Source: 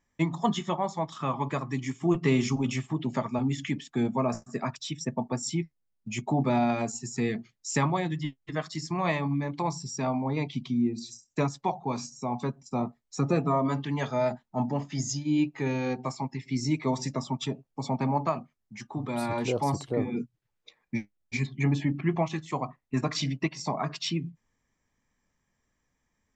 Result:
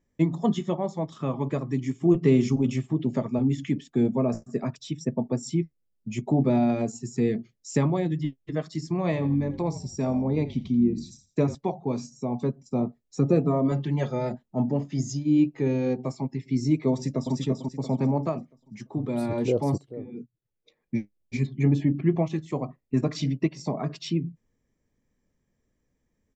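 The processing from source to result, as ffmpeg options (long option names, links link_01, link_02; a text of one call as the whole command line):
ffmpeg -i in.wav -filter_complex "[0:a]asettb=1/sr,asplit=3[link_01][link_02][link_03];[link_01]atrim=end=9.044[link_04];[link_02]atrim=start=9.04:end=11.55,asetpts=PTS-STARTPTS,afade=type=in:duration=0.004:curve=qsin,afade=type=out:start_time=2.506:duration=0.004:curve=qsin,asplit=4[link_05][link_06][link_07][link_08];[link_06]adelay=84,afreqshift=-46,volume=-15dB[link_09];[link_07]adelay=168,afreqshift=-92,volume=-25.2dB[link_10];[link_08]adelay=252,afreqshift=-138,volume=-35.3dB[link_11];[link_05][link_09][link_10][link_11]amix=inputs=4:normalize=0,atrim=end_sample=110691[link_12];[link_03]atrim=start=11.546[link_13];[link_04][link_12]acrossfade=duration=0.004:curve1=hsin:curve2=qsin[link_14];[link_14][link_13]acrossfade=duration=0.004:curve1=qsin:curve2=hsin,asettb=1/sr,asplit=3[link_15][link_16][link_17];[link_15]atrim=end=13.714[link_18];[link_16]atrim=start=13.71:end=14.34,asetpts=PTS-STARTPTS,afade=type=in:duration=0.004:curve=qsin,afade=type=out:start_time=0.626:duration=0.004:curve=qsin,aecho=1:1:5.6:0.59,atrim=end_sample=27783[link_19];[link_17]atrim=start=14.336[link_20];[link_18][link_19]acrossfade=duration=0.004:curve1=hsin:curve2=qsin[link_21];[link_21][link_20]acrossfade=duration=0.004:curve1=qsin:curve2=hsin,asplit=2[link_22][link_23];[link_23]afade=type=in:start_time=16.92:duration=0.01,afade=type=out:start_time=17.34:duration=0.01,aecho=0:1:340|680|1020|1360|1700:0.668344|0.23392|0.0818721|0.0286552|0.0100293[link_24];[link_22][link_24]amix=inputs=2:normalize=0,asplit=2[link_25][link_26];[link_25]atrim=end=19.78,asetpts=PTS-STARTPTS,afade=type=out:start_time=19.776:duration=0.004:curve=hsin:silence=0.177828[link_27];[link_26]atrim=start=19.78,asetpts=PTS-STARTPTS,afade=type=in:duration=1.22:curve=qua:silence=0.177828[link_28];[link_27][link_28]concat=n=2:v=0:a=1,lowshelf=frequency=670:width_type=q:width=1.5:gain=8.5,volume=-5dB" out.wav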